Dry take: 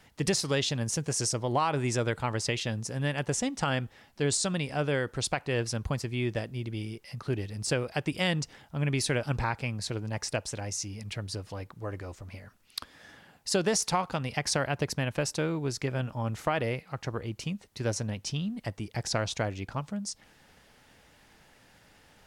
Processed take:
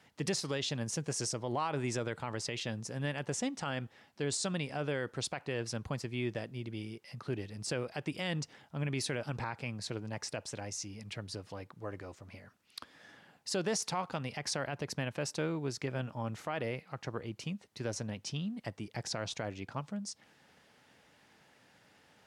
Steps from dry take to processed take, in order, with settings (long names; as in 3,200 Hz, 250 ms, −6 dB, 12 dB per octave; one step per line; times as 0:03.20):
high-pass filter 120 Hz 12 dB per octave
high-shelf EQ 10,000 Hz −8.5 dB
brickwall limiter −20 dBFS, peak gain reduction 7 dB
level −4 dB